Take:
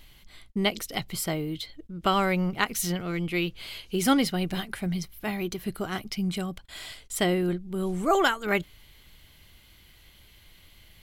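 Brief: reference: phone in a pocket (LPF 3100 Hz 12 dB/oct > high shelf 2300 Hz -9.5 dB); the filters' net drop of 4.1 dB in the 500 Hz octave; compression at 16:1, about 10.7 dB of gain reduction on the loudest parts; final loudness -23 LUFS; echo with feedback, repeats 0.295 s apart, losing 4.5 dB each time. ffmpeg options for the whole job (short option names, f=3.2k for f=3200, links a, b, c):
-af "equalizer=f=500:t=o:g=-5.5,acompressor=threshold=-29dB:ratio=16,lowpass=3.1k,highshelf=f=2.3k:g=-9.5,aecho=1:1:295|590|885|1180|1475|1770|2065|2360|2655:0.596|0.357|0.214|0.129|0.0772|0.0463|0.0278|0.0167|0.01,volume=12dB"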